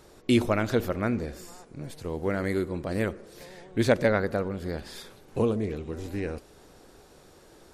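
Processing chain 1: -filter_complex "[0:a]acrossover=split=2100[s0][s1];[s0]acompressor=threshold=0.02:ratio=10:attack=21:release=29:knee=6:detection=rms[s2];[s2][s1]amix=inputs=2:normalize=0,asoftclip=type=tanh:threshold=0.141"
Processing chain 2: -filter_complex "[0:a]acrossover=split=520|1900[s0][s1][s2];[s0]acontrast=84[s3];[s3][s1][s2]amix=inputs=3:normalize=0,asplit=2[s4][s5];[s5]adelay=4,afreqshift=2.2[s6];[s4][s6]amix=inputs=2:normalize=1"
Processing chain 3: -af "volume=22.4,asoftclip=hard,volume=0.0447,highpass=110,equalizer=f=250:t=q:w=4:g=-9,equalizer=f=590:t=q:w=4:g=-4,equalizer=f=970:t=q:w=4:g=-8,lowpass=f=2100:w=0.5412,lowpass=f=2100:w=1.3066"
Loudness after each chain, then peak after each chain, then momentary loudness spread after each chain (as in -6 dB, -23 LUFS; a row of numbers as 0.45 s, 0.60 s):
-36.5 LUFS, -26.0 LUFS, -36.5 LUFS; -18.5 dBFS, -6.5 dBFS, -23.0 dBFS; 20 LU, 15 LU, 13 LU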